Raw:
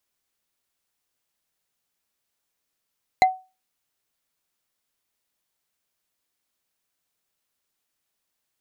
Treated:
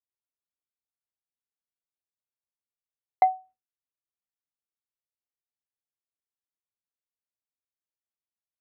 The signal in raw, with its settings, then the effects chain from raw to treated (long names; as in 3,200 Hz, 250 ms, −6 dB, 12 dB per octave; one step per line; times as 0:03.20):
struck wood bar, lowest mode 750 Hz, decay 0.29 s, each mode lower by 6 dB, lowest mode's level −9 dB
low-pass filter 1,100 Hz 12 dB per octave
noise gate with hold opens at −51 dBFS
parametric band 100 Hz +12 dB 0.2 octaves